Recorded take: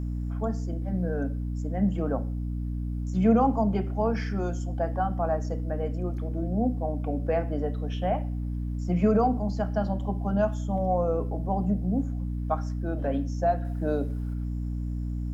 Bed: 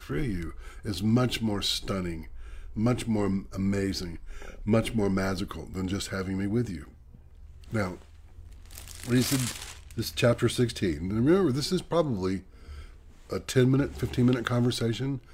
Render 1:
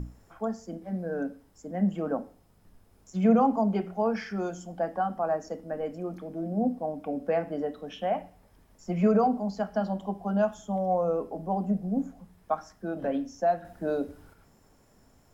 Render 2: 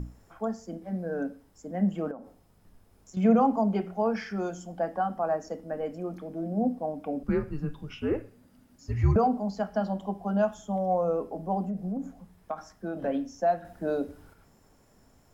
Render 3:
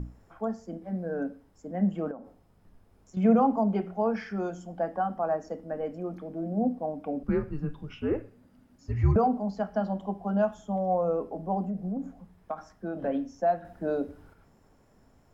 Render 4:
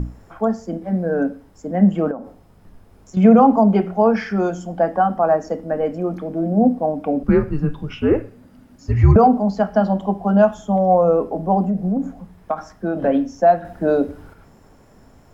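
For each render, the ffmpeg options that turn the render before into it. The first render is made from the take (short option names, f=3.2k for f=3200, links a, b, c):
-af "bandreject=f=60:t=h:w=6,bandreject=f=120:t=h:w=6,bandreject=f=180:t=h:w=6,bandreject=f=240:t=h:w=6,bandreject=f=300:t=h:w=6"
-filter_complex "[0:a]asettb=1/sr,asplit=3[a][b][c];[a]atrim=end=2.114[d];[b]atrim=start=2.11:end=3.17,asetpts=PTS-STARTPTS,afade=t=in:d=0.004:c=qsin,afade=t=out:st=1.056:d=0.004:c=qsin,acompressor=threshold=-41dB:ratio=3:attack=3.2:release=140:knee=1:detection=peak[e];[c]atrim=start=3.166[f];[d][e]acrossfade=d=0.004:c1=hsin:c2=qsin[g];[g][f]acrossfade=d=0.004:c1=qsin:c2=hsin,asettb=1/sr,asplit=3[h][i][j];[h]atrim=end=7.234[k];[i]atrim=start=7.23:end=9.16,asetpts=PTS-STARTPTS,afade=t=in:d=0.004:c=qsin,afade=t=out:st=1.926:d=0.004:c=qsin,afreqshift=-290[l];[j]atrim=start=9.156[m];[k][l]acrossfade=d=0.004:c1=hsin:c2=qsin[n];[n][m]acrossfade=d=0.004:c1=qsin:c2=hsin,asettb=1/sr,asplit=3[o][p][q];[o]atrim=end=11.664[r];[p]atrim=start=11.66:end=12.97,asetpts=PTS-STARTPTS,afade=t=in:d=0.004:c=qsin,afade=t=out:st=1.306:d=0.004:c=qsin,acompressor=threshold=-28dB:ratio=6:attack=3.2:release=140:knee=1:detection=peak[s];[q]atrim=start=12.966[t];[r][s]acrossfade=d=0.004:c1=hsin:c2=qsin[u];[u][t]acrossfade=d=0.004:c1=qsin:c2=hsin"
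-af "highshelf=f=3.8k:g=-9.5"
-af "volume=12dB,alimiter=limit=-3dB:level=0:latency=1"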